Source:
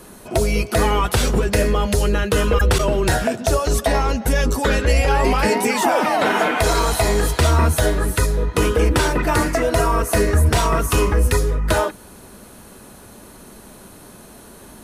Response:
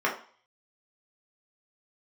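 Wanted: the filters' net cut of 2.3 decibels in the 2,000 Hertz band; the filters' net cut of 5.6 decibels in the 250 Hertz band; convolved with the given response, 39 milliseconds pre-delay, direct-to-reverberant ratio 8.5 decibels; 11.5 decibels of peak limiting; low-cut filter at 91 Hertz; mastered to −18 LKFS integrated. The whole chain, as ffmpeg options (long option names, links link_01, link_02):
-filter_complex "[0:a]highpass=91,equalizer=frequency=250:width_type=o:gain=-7.5,equalizer=frequency=2000:width_type=o:gain=-3,alimiter=limit=-18.5dB:level=0:latency=1,asplit=2[link_01][link_02];[1:a]atrim=start_sample=2205,adelay=39[link_03];[link_02][link_03]afir=irnorm=-1:irlink=0,volume=-21.5dB[link_04];[link_01][link_04]amix=inputs=2:normalize=0,volume=9dB"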